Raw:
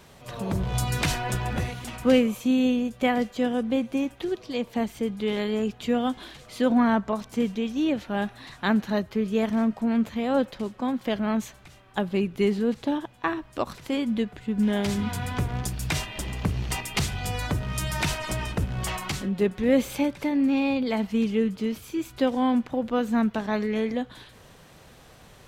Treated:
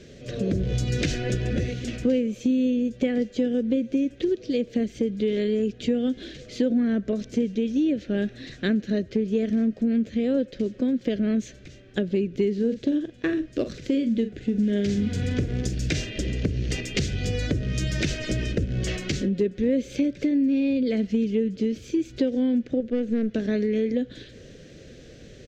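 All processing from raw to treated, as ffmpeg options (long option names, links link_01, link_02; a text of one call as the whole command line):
ffmpeg -i in.wav -filter_complex "[0:a]asettb=1/sr,asplit=3[link_01][link_02][link_03];[link_01]atrim=end=12.544[link_04];[link_02]atrim=start=12.54:end=16.1,asetpts=PTS-STARTPTS,afade=type=in:duration=0.004:curve=qsin,afade=type=out:start_time=3.556:duration=0.004:curve=qsin,acrusher=bits=8:mode=log:mix=0:aa=0.000001,asplit=2[link_05][link_06];[link_06]adelay=44,volume=-11dB[link_07];[link_05][link_07]amix=inputs=2:normalize=0,atrim=end_sample=156996[link_08];[link_03]atrim=start=16.096[link_09];[link_04][link_08]acrossfade=duration=0.004:curve1=hsin:curve2=qsin[link_10];[link_10][link_09]acrossfade=duration=0.004:curve1=qsin:curve2=hsin,asettb=1/sr,asplit=3[link_11][link_12][link_13];[link_11]atrim=end=22.804[link_14];[link_12]atrim=start=22.8:end=23.29,asetpts=PTS-STARTPTS,afade=type=in:duration=0.004:curve=qsin,afade=type=out:start_time=0.486:duration=0.004:curve=qsin,acrossover=split=3500[link_15][link_16];[link_16]acompressor=threshold=-56dB:ratio=4:attack=1:release=60[link_17];[link_15][link_17]amix=inputs=2:normalize=0,aeval=exprs='(tanh(10*val(0)+0.75)-tanh(0.75))/10':channel_layout=same[link_18];[link_13]atrim=start=23.286[link_19];[link_14][link_18]acrossfade=duration=0.004:curve1=hsin:curve2=qsin[link_20];[link_20][link_19]acrossfade=duration=0.004:curve1=qsin:curve2=hsin,firequalizer=gain_entry='entry(170,0);entry(280,5);entry(520,3);entry(900,-28);entry(1600,-5);entry(6500,-2);entry(10000,-24)':delay=0.05:min_phase=1,acompressor=threshold=-27dB:ratio=4,volume=5.5dB" out.wav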